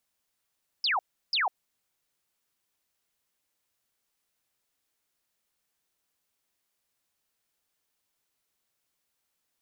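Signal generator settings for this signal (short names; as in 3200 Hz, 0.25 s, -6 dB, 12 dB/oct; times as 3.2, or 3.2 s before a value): burst of laser zaps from 5400 Hz, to 690 Hz, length 0.15 s sine, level -23.5 dB, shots 2, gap 0.34 s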